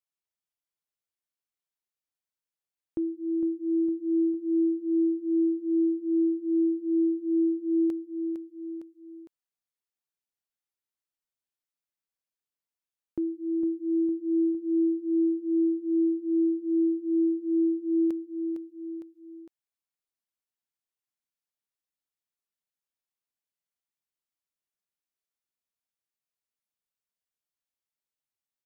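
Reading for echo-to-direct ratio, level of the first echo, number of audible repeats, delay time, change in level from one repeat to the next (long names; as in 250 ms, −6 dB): −6.5 dB, −8.0 dB, 3, 457 ms, −4.5 dB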